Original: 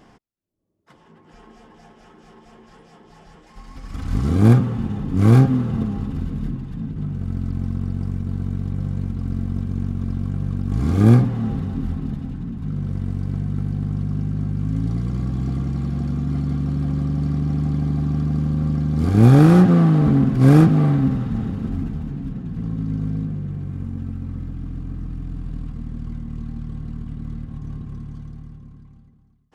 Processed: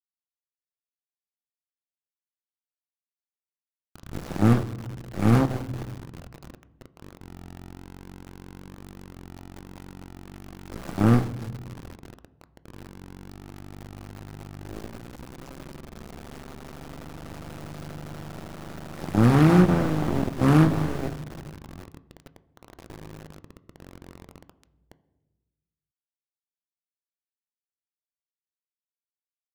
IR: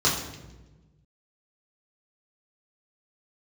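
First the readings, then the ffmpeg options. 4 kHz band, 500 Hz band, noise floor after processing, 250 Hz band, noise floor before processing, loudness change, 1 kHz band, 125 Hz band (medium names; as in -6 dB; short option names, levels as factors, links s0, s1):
no reading, -3.5 dB, under -85 dBFS, -7.5 dB, -52 dBFS, -2.0 dB, -1.5 dB, -10.0 dB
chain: -filter_complex "[0:a]aeval=exprs='0.794*(cos(1*acos(clip(val(0)/0.794,-1,1)))-cos(1*PI/2))+0.0891*(cos(4*acos(clip(val(0)/0.794,-1,1)))-cos(4*PI/2))+0.1*(cos(6*acos(clip(val(0)/0.794,-1,1)))-cos(6*PI/2))+0.178*(cos(7*acos(clip(val(0)/0.794,-1,1)))-cos(7*PI/2))':c=same,aeval=exprs='val(0)*gte(abs(val(0)),0.0473)':c=same,asplit=2[s0][s1];[1:a]atrim=start_sample=2205,lowpass=2800[s2];[s1][s2]afir=irnorm=-1:irlink=0,volume=0.0447[s3];[s0][s3]amix=inputs=2:normalize=0,volume=0.422"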